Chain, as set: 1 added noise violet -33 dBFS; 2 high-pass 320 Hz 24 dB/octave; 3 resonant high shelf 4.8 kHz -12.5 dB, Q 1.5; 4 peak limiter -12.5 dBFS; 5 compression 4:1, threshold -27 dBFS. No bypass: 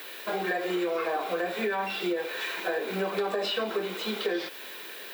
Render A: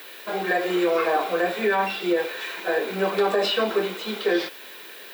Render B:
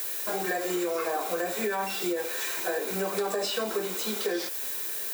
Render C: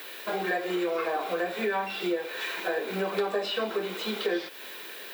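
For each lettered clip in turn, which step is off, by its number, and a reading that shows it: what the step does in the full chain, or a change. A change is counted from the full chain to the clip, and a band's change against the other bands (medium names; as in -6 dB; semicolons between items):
5, 8 kHz band -2.5 dB; 3, 8 kHz band +14.0 dB; 4, crest factor change +2.0 dB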